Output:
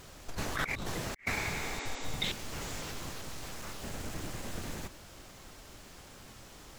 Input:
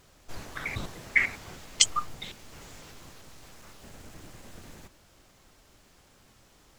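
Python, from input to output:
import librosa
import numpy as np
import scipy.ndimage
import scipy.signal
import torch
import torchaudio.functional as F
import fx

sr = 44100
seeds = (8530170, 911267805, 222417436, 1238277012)

y = fx.over_compress(x, sr, threshold_db=-38.0, ratio=-0.5)
y = fx.spec_repair(y, sr, seeds[0], start_s=1.39, length_s=0.75, low_hz=240.0, high_hz=8200.0, source='both')
y = F.gain(torch.from_numpy(y), 2.5).numpy()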